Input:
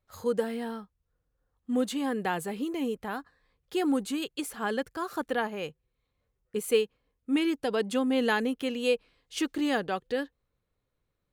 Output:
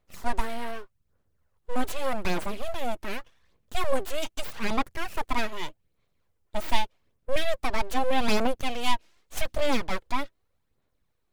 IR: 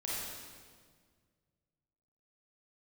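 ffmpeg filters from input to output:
-af "aeval=exprs='abs(val(0))':c=same,aphaser=in_gain=1:out_gain=1:delay=3.2:decay=0.42:speed=0.83:type=sinusoidal,volume=3dB"

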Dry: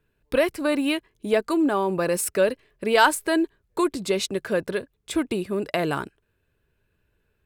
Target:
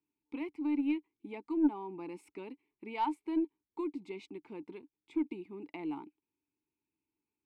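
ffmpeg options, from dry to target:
-filter_complex "[0:a]asplit=3[a][b][c];[a]bandpass=f=300:t=q:w=8,volume=0dB[d];[b]bandpass=f=870:t=q:w=8,volume=-6dB[e];[c]bandpass=f=2.24k:t=q:w=8,volume=-9dB[f];[d][e][f]amix=inputs=3:normalize=0,aeval=exprs='0.158*(cos(1*acos(clip(val(0)/0.158,-1,1)))-cos(1*PI/2))+0.00501*(cos(2*acos(clip(val(0)/0.158,-1,1)))-cos(2*PI/2))+0.0178*(cos(3*acos(clip(val(0)/0.158,-1,1)))-cos(3*PI/2))+0.00447*(cos(5*acos(clip(val(0)/0.158,-1,1)))-cos(5*PI/2))':c=same,volume=-2.5dB"

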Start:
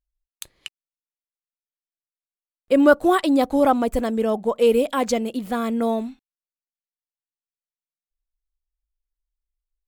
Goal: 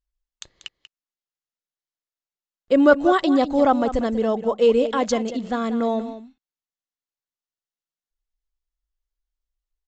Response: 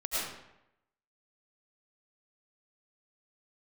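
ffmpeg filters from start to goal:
-filter_complex "[0:a]bandreject=f=2.4k:w=9.4,asplit=2[a][b];[b]aecho=0:1:189:0.237[c];[a][c]amix=inputs=2:normalize=0,aresample=16000,aresample=44100"

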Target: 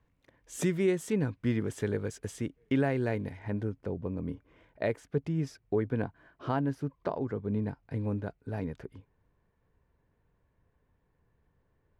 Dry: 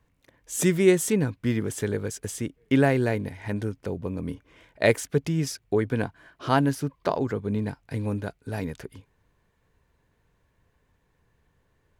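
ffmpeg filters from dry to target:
-af "asetnsamples=n=441:p=0,asendcmd='3.39 lowpass f 1200',lowpass=f=3.1k:p=1,alimiter=limit=-14.5dB:level=0:latency=1:release=493,volume=-3.5dB"

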